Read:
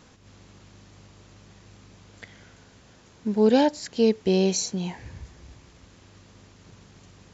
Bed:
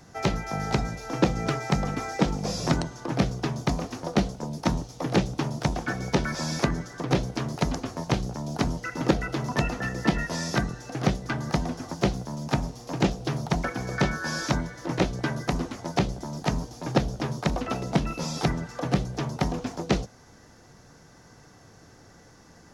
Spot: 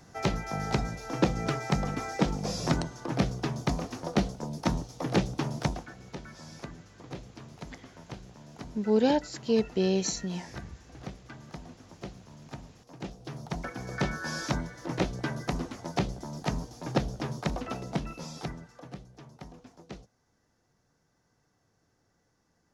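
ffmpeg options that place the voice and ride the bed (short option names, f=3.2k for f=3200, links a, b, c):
-filter_complex "[0:a]adelay=5500,volume=-5dB[a];[1:a]volume=10dB,afade=t=out:st=5.65:d=0.24:silence=0.188365,afade=t=in:st=12.99:d=1.2:silence=0.223872,afade=t=out:st=17.36:d=1.61:silence=0.16788[b];[a][b]amix=inputs=2:normalize=0"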